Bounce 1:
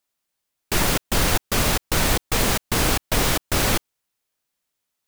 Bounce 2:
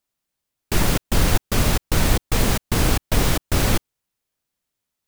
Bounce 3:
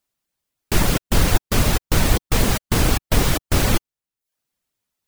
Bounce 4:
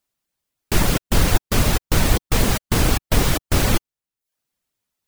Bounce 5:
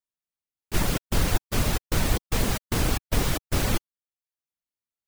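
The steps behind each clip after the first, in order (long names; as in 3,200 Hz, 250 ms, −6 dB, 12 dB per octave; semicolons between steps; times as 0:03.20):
low-shelf EQ 310 Hz +8 dB; level −2.5 dB
reverb reduction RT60 0.5 s; level +2 dB
no processing that can be heard
noise gate −20 dBFS, range −11 dB; level −6.5 dB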